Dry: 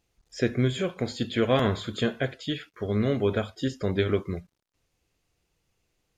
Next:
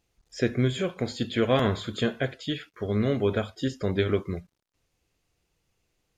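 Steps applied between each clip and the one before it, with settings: no audible change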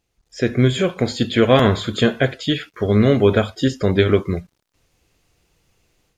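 level rider gain up to 10.5 dB; trim +1 dB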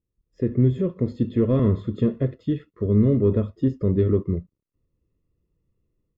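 waveshaping leveller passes 1; boxcar filter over 57 samples; trim -4.5 dB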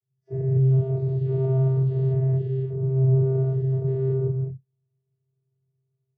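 every event in the spectrogram widened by 240 ms; vocoder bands 16, square 132 Hz; trim -5 dB

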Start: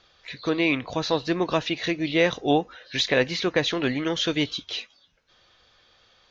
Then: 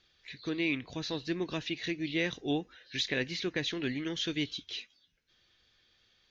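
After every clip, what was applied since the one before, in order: high-order bell 810 Hz -9 dB; trim -8 dB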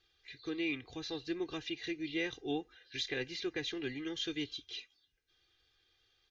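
comb 2.5 ms, depth 74%; trim -7 dB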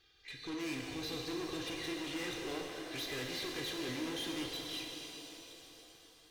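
valve stage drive 45 dB, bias 0.25; pitch-shifted reverb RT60 3.6 s, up +7 st, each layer -8 dB, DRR 0 dB; trim +5 dB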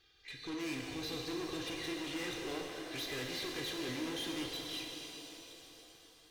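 no audible change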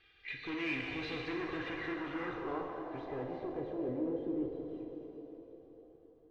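low-pass sweep 2.4 kHz -> 450 Hz, 1.10–4.37 s; trim +1 dB

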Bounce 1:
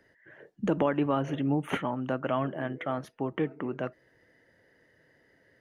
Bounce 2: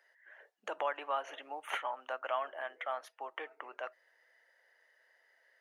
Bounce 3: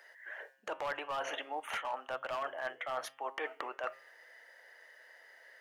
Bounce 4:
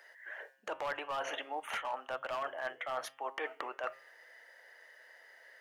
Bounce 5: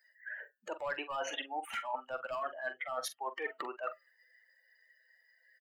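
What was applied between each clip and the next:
high-pass 660 Hz 24 dB/octave; trim -2.5 dB
hard clipper -31.5 dBFS, distortion -12 dB; reverse; compression 10:1, threshold -46 dBFS, peak gain reduction 12.5 dB; reverse; de-hum 134.4 Hz, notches 26; trim +11.5 dB
hum notches 50/100/150 Hz
expander on every frequency bin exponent 2; reverse; compression, threshold -48 dBFS, peak gain reduction 11 dB; reverse; doubling 44 ms -11.5 dB; trim +12.5 dB

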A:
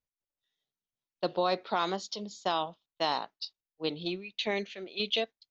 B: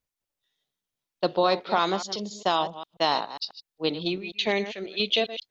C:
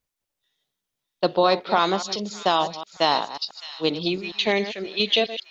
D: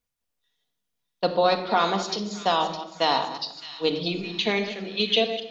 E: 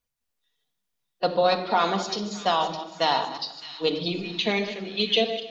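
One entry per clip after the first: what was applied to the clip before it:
chunks repeated in reverse 135 ms, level -12.5 dB; trim +6 dB
feedback echo behind a high-pass 611 ms, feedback 52%, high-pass 2.2 kHz, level -11.5 dB; trim +3.5 dB
simulated room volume 2700 m³, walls furnished, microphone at 1.8 m; trim -3 dB
coarse spectral quantiser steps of 15 dB; thinning echo 150 ms, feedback 59%, level -22 dB

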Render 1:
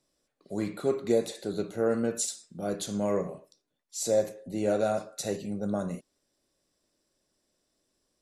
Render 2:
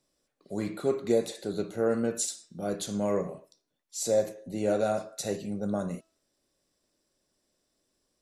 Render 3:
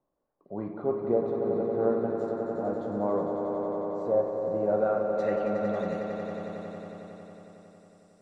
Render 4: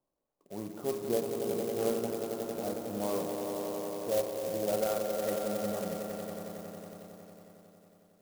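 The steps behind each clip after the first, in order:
de-hum 326.6 Hz, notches 20
low-pass sweep 950 Hz -> 8.4 kHz, 4.67–6.53 s; echo with a slow build-up 91 ms, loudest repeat 5, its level -8 dB; trim -3.5 dB
sampling jitter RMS 0.074 ms; trim -5 dB

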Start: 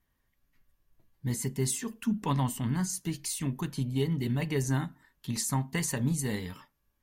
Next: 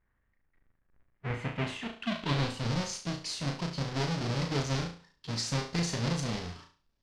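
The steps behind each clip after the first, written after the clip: square wave that keeps the level; flutter echo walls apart 6 m, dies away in 0.39 s; low-pass sweep 1.8 kHz -> 5 kHz, 0.99–2.74 s; trim -7.5 dB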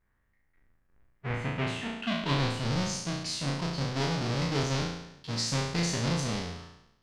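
spectral sustain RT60 0.85 s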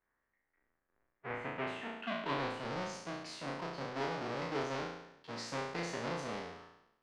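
three-band isolator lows -17 dB, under 280 Hz, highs -13 dB, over 2.4 kHz; trim -3 dB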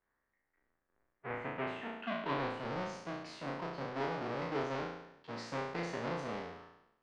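low-pass 2.7 kHz 6 dB/octave; trim +1 dB

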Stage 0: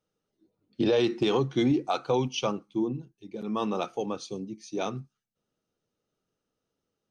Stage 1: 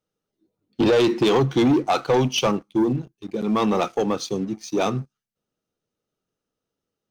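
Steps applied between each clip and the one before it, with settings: waveshaping leveller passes 2; trim +3 dB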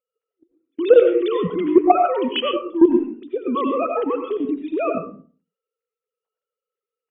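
formants replaced by sine waves; level held to a coarse grid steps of 14 dB; algorithmic reverb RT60 0.42 s, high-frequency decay 0.5×, pre-delay 55 ms, DRR 4 dB; trim +6.5 dB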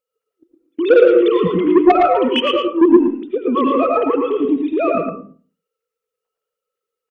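saturation -9.5 dBFS, distortion -12 dB; delay 112 ms -4 dB; trim +4.5 dB

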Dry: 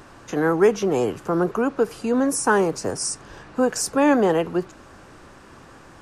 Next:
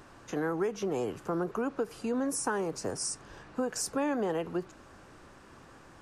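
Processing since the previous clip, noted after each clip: compression 6:1, threshold -20 dBFS, peak gain reduction 8.5 dB; trim -7.5 dB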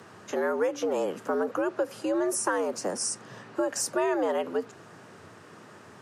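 frequency shift +87 Hz; trim +4 dB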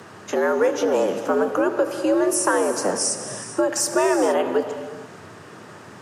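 gated-style reverb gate 490 ms flat, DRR 7.5 dB; trim +7 dB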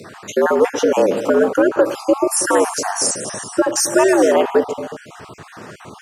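random holes in the spectrogram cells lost 31%; trim +6.5 dB

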